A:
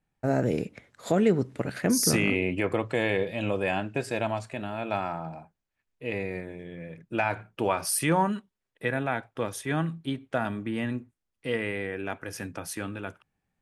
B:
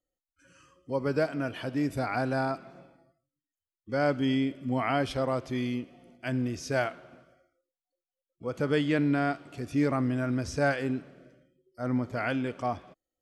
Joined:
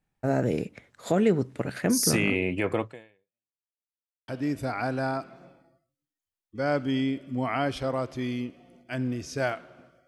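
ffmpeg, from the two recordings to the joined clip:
-filter_complex "[0:a]apad=whole_dur=10.07,atrim=end=10.07,asplit=2[a][b];[a]atrim=end=3.63,asetpts=PTS-STARTPTS,afade=t=out:st=2.82:d=0.81:c=exp[c];[b]atrim=start=3.63:end=4.28,asetpts=PTS-STARTPTS,volume=0[d];[1:a]atrim=start=1.62:end=7.41,asetpts=PTS-STARTPTS,afade=t=in:d=0.004:c=hsin[e];[c][d][e]concat=n=3:v=0:a=1"

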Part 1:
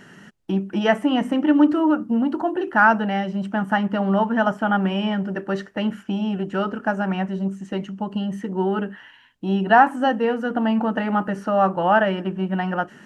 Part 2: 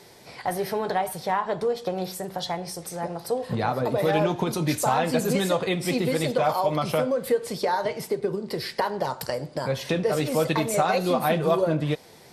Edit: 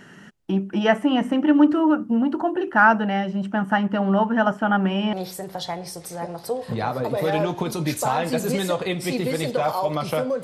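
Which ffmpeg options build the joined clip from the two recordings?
-filter_complex "[0:a]apad=whole_dur=10.43,atrim=end=10.43,atrim=end=5.132[a];[1:a]atrim=start=1.938:end=7.24[b];[a][b]acrossfade=d=0.004:c1=hsin:c2=hsin"

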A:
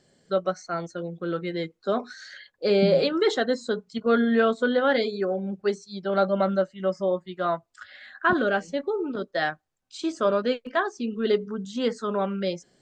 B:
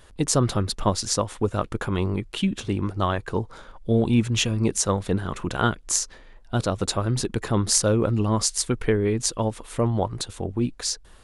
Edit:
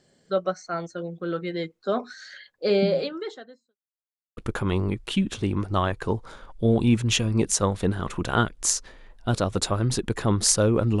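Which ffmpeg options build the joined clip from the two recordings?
-filter_complex "[0:a]apad=whole_dur=11,atrim=end=11,asplit=2[a][b];[a]atrim=end=3.77,asetpts=PTS-STARTPTS,afade=t=out:st=2.75:d=1.02:c=qua[c];[b]atrim=start=3.77:end=4.37,asetpts=PTS-STARTPTS,volume=0[d];[1:a]atrim=start=1.63:end=8.26,asetpts=PTS-STARTPTS,afade=t=in:d=0.004:c=hsin[e];[c][d][e]concat=n=3:v=0:a=1"

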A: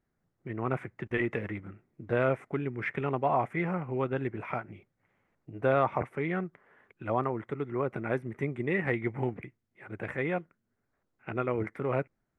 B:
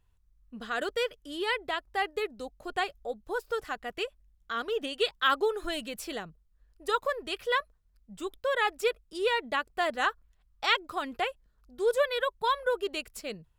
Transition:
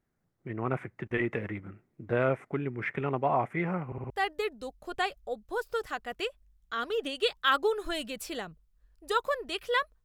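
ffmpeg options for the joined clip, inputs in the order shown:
-filter_complex "[0:a]apad=whole_dur=10.04,atrim=end=10.04,asplit=4[a][b][c][d];[a]atrim=end=3.922[e];[b]atrim=start=3.858:end=3.922[f];[c]atrim=start=3.858:end=3.922[g];[d]atrim=start=3.858:end=3.922[h];[1:a]atrim=start=1.878:end=7.82[i];[e][f]acrossfade=d=0.004:c1=hsin:c2=hsin[j];[j][g]acrossfade=d=0.004:c1=hsin:c2=hsin[k];[k][h]acrossfade=d=0.004:c1=hsin:c2=hsin[l];[l][i]acrossfade=d=0.004:c1=hsin:c2=hsin"

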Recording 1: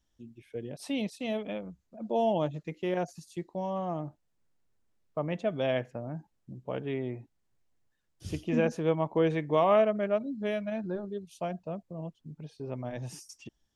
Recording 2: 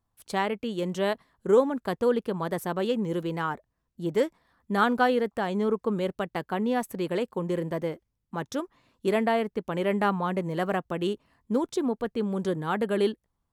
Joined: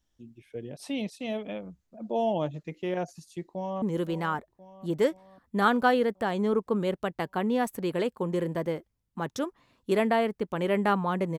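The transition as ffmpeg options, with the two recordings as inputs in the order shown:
-filter_complex "[0:a]apad=whole_dur=11.38,atrim=end=11.38,atrim=end=3.822[a];[1:a]atrim=start=2.978:end=10.54[b];[a][b]acrossfade=d=0.004:c1=hsin:c2=hsin,asplit=2[c][d];[d]afade=t=in:st=3.43:d=0.01,afade=t=out:st=3.82:d=0.01,aecho=0:1:520|1040|1560|2080|2600|3120|3640:0.223872|0.134323|0.080594|0.0483564|0.0290138|0.0174083|0.010445[e];[c][e]amix=inputs=2:normalize=0"

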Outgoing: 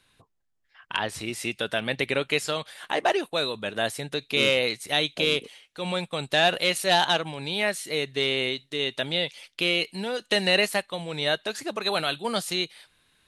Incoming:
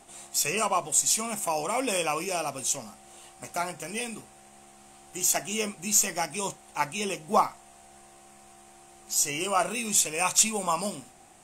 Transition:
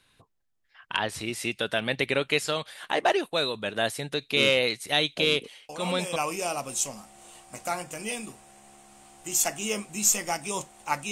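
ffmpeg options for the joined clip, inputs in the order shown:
-filter_complex "[1:a]asplit=2[a][b];[0:a]apad=whole_dur=11.11,atrim=end=11.11,atrim=end=6.162[c];[b]atrim=start=2.048:end=7[d];[a]atrim=start=1.58:end=2.05,asetpts=PTS-STARTPTS,volume=-8dB,afade=t=in:d=0.004:c=hsin,afade=t=out:st=0.466:d=0.004:c=hsin,adelay=250929S[e];[c][d]acrossfade=d=0.004:c1=hsin:c2=hsin[f];[f][e]amix=inputs=2:normalize=0"

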